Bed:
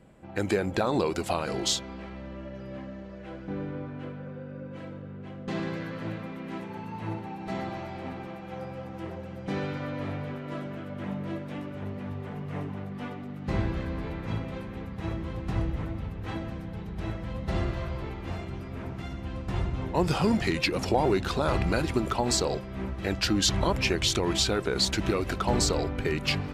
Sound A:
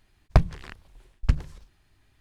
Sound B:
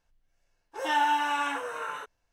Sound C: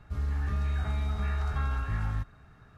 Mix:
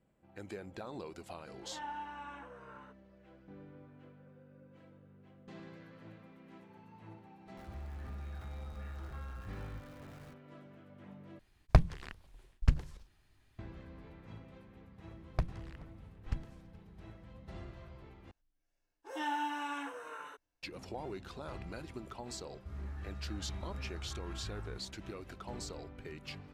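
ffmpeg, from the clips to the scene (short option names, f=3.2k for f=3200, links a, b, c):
-filter_complex "[2:a]asplit=2[a][b];[3:a]asplit=2[c][d];[1:a]asplit=2[e][f];[0:a]volume=-18.5dB[g];[a]lowpass=f=1.4k:p=1[h];[c]aeval=exprs='val(0)+0.5*0.0133*sgn(val(0))':c=same[i];[f]aecho=1:1:427:0.0668[j];[b]equalizer=f=300:w=3:g=9.5[k];[d]alimiter=level_in=1.5dB:limit=-24dB:level=0:latency=1:release=441,volume=-1.5dB[l];[g]asplit=3[m][n][o];[m]atrim=end=11.394[p];[e]atrim=end=2.2,asetpts=PTS-STARTPTS,volume=-5dB[q];[n]atrim=start=13.586:end=18.314[r];[k]atrim=end=2.32,asetpts=PTS-STARTPTS,volume=-11.5dB[s];[o]atrim=start=20.626[t];[h]atrim=end=2.32,asetpts=PTS-STARTPTS,volume=-16dB,afade=t=in:d=0.004:c=hsin,afade=t=out:st=2.316:d=0.004:c=hsin,adelay=870[u];[i]atrim=end=2.77,asetpts=PTS-STARTPTS,volume=-16dB,afade=t=in:d=0.004:c=hsin,afade=t=out:st=2.766:d=0.004:c=hsin,adelay=7570[v];[j]atrim=end=2.2,asetpts=PTS-STARTPTS,volume=-15dB,afade=t=in:d=0.004:c=hsin,afade=t=out:st=2.196:d=0.004:c=hsin,adelay=15030[w];[l]atrim=end=2.77,asetpts=PTS-STARTPTS,volume=-11dB,afade=t=in:d=0.004:c=hsin,afade=t=out:st=2.766:d=0.004:c=hsin,adelay=22550[x];[p][q]acrossfade=d=0.004:c1=hsin:c2=hsin[y];[y][r]acrossfade=d=0.004:c1=hsin:c2=hsin[z];[z][s]acrossfade=d=0.004:c1=hsin:c2=hsin[aa];[aa][t]acrossfade=d=0.004:c1=hsin:c2=hsin[ab];[ab][u][v][w][x]amix=inputs=5:normalize=0"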